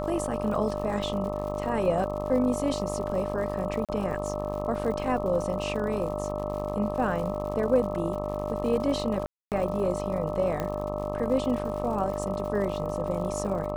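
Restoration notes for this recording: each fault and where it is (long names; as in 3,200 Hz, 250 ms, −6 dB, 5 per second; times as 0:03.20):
mains buzz 50 Hz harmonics 26 −34 dBFS
surface crackle 110 per second −36 dBFS
whistle 600 Hz −33 dBFS
0:03.85–0:03.89: drop-out 37 ms
0:09.26–0:09.52: drop-out 258 ms
0:10.60: click −17 dBFS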